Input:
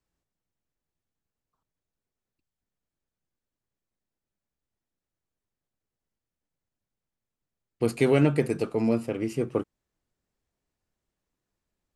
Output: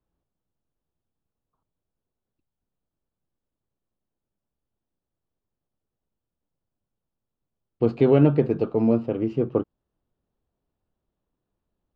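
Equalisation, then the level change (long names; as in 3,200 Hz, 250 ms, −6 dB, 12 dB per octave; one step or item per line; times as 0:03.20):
low-pass filter 3,200 Hz 24 dB per octave
parametric band 2,100 Hz −14 dB 0.95 octaves
+4.5 dB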